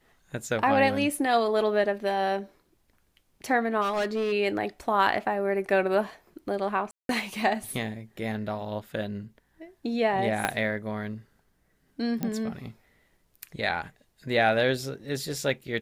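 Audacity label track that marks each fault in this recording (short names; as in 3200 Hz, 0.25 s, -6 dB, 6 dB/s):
3.810000	4.330000	clipped -23.5 dBFS
6.910000	7.090000	gap 0.182 s
10.450000	10.450000	pop -11 dBFS
12.230000	12.230000	pop -16 dBFS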